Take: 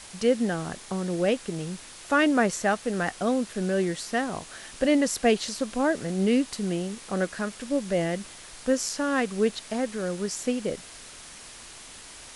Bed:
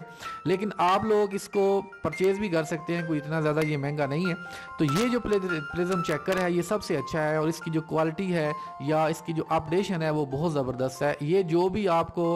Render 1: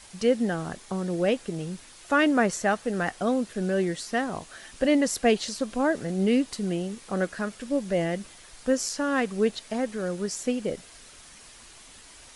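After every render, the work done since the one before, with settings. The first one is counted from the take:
broadband denoise 6 dB, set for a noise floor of −45 dBFS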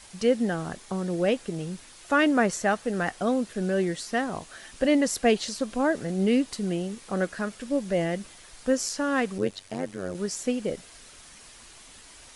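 0:09.38–0:10.15: amplitude modulation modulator 95 Hz, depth 80%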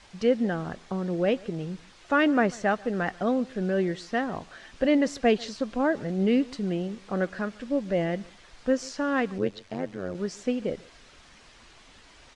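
high-frequency loss of the air 130 metres
single-tap delay 142 ms −23.5 dB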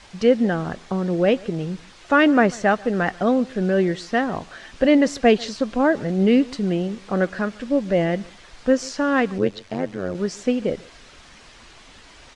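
level +6.5 dB

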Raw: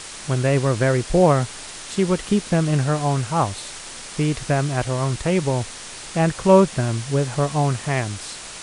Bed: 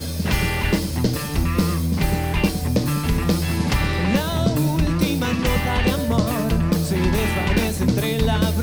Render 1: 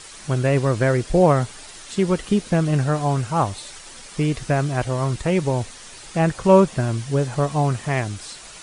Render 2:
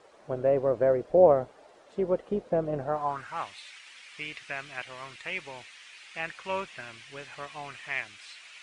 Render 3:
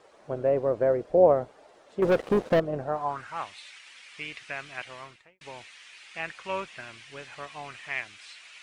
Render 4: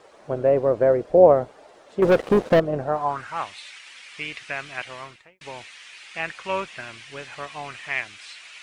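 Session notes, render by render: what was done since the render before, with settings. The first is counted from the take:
broadband denoise 8 dB, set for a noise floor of −37 dBFS
sub-octave generator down 2 octaves, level −5 dB; band-pass filter sweep 560 Hz → 2,400 Hz, 0:02.78–0:03.44
0:02.02–0:02.60: leveller curve on the samples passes 3; 0:04.93–0:05.41: fade out and dull
level +5.5 dB

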